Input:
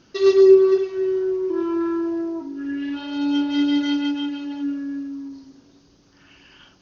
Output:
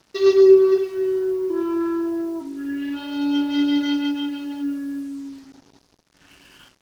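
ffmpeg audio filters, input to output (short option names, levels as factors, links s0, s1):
-af "acrusher=bits=7:mix=0:aa=0.5"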